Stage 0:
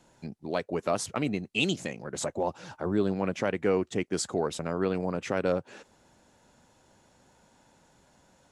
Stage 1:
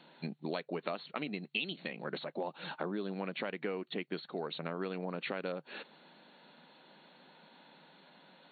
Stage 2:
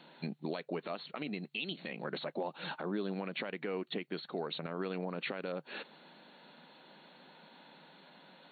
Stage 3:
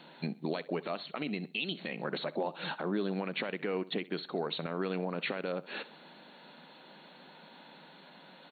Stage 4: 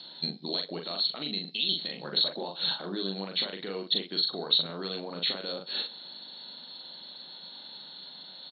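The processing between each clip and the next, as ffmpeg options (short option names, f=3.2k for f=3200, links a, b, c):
-af "highshelf=f=2.1k:g=11,acompressor=threshold=-34dB:ratio=12,afftfilt=real='re*between(b*sr/4096,150,4400)':imag='im*between(b*sr/4096,150,4400)':win_size=4096:overlap=0.75,volume=1dB"
-af "alimiter=level_in=4.5dB:limit=-24dB:level=0:latency=1:release=56,volume=-4.5dB,volume=2dB"
-af "aecho=1:1:64|128|192:0.112|0.0381|0.013,volume=3.5dB"
-filter_complex "[0:a]aexciter=amount=14.2:drive=8.6:freq=3.9k,asplit=2[a][b];[b]adelay=41,volume=-4dB[c];[a][c]amix=inputs=2:normalize=0,aresample=11025,aresample=44100,volume=-4dB"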